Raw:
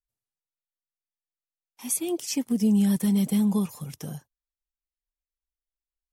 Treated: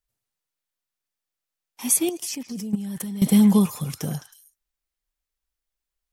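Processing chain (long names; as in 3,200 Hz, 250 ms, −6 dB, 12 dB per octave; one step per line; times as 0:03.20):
echo through a band-pass that steps 106 ms, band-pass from 1,600 Hz, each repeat 1.4 octaves, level −5 dB
0:02.09–0:03.22: output level in coarse steps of 19 dB
level +7.5 dB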